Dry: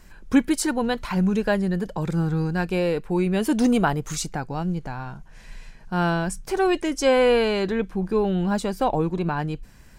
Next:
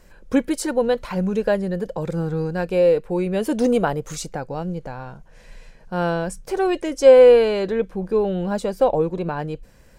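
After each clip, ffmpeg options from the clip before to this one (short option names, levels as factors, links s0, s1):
-af "equalizer=f=520:t=o:w=0.51:g=12.5,volume=0.75"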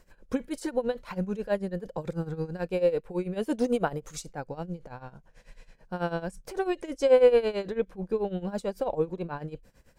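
-af "tremolo=f=9.1:d=0.84,volume=0.562"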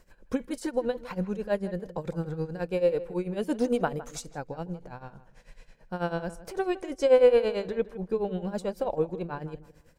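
-filter_complex "[0:a]asplit=2[s0][s1];[s1]adelay=159,lowpass=f=2700:p=1,volume=0.168,asplit=2[s2][s3];[s3]adelay=159,lowpass=f=2700:p=1,volume=0.29,asplit=2[s4][s5];[s5]adelay=159,lowpass=f=2700:p=1,volume=0.29[s6];[s0][s2][s4][s6]amix=inputs=4:normalize=0"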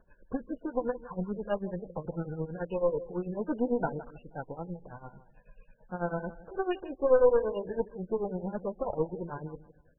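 -af "aeval=exprs='0.335*(cos(1*acos(clip(val(0)/0.335,-1,1)))-cos(1*PI/2))+0.0422*(cos(4*acos(clip(val(0)/0.335,-1,1)))-cos(4*PI/2))':c=same,asuperstop=centerf=2100:order=12:qfactor=3.2,volume=0.708" -ar 24000 -c:a libmp3lame -b:a 8k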